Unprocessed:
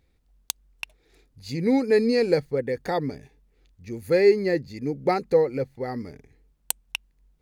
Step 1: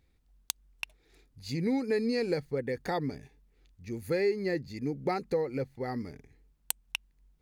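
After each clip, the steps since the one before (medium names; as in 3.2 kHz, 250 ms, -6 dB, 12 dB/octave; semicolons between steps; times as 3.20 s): peaking EQ 530 Hz -3.5 dB 0.77 oct; compression 2.5:1, threshold -25 dBFS, peak gain reduction 8 dB; trim -2.5 dB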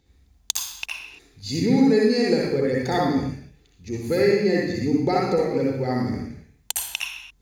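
reverberation, pre-delay 54 ms, DRR -4 dB; trim +2.5 dB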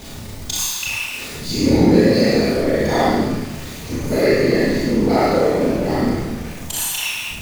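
jump at every zero crossing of -29 dBFS; whisper effect; Schroeder reverb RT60 0.67 s, combs from 26 ms, DRR -5 dB; trim -2 dB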